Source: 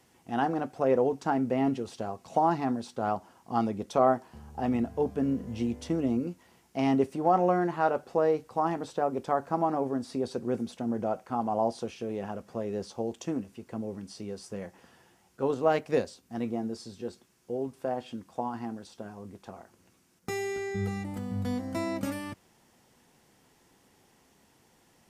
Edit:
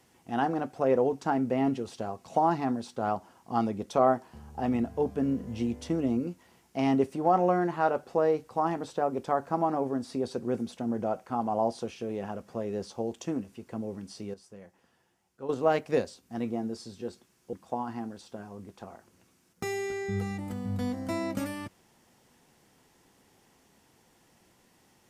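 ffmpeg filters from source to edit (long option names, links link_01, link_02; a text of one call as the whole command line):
ffmpeg -i in.wav -filter_complex "[0:a]asplit=4[link_01][link_02][link_03][link_04];[link_01]atrim=end=14.342[link_05];[link_02]atrim=start=14.338:end=15.492,asetpts=PTS-STARTPTS,volume=-10.5dB[link_06];[link_03]atrim=start=15.488:end=17.532[link_07];[link_04]atrim=start=18.188[link_08];[link_05][link_06]acrossfade=duration=0.004:curve1=hsin:curve2=hsin[link_09];[link_09][link_07]acrossfade=duration=0.004:curve1=hsin:curve2=hsin[link_10];[link_10][link_08]acrossfade=duration=0.004:curve1=hsin:curve2=hsin" out.wav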